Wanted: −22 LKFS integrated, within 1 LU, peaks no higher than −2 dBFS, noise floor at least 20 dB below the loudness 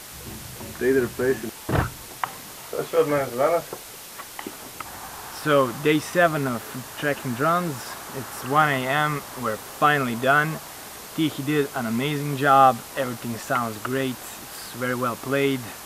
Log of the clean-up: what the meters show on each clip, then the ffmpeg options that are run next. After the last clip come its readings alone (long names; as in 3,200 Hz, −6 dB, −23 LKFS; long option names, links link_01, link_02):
background noise floor −40 dBFS; target noise floor −44 dBFS; integrated loudness −23.5 LKFS; sample peak −4.5 dBFS; target loudness −22.0 LKFS
→ -af "afftdn=noise_reduction=6:noise_floor=-40"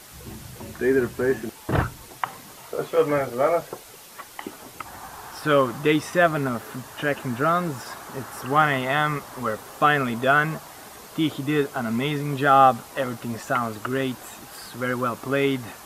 background noise floor −45 dBFS; integrated loudness −23.5 LKFS; sample peak −4.5 dBFS; target loudness −22.0 LKFS
→ -af "volume=1.5dB"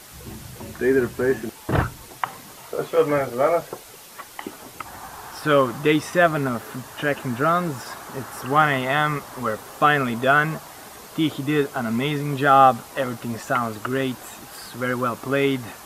integrated loudness −22.0 LKFS; sample peak −3.0 dBFS; background noise floor −43 dBFS